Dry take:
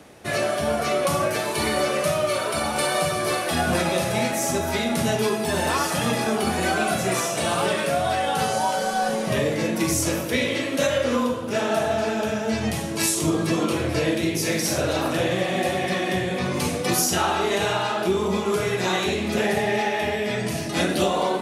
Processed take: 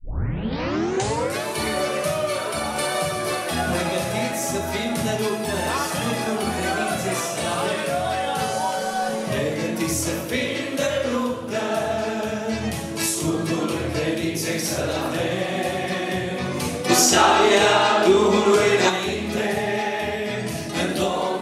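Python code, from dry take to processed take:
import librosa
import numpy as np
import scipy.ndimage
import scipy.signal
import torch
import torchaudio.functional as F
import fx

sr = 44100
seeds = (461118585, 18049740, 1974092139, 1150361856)

y = fx.tape_start_head(x, sr, length_s=1.45)
y = fx.spec_box(y, sr, start_s=16.9, length_s=1.99, low_hz=210.0, high_hz=9000.0, gain_db=8)
y = y * 10.0 ** (-1.0 / 20.0)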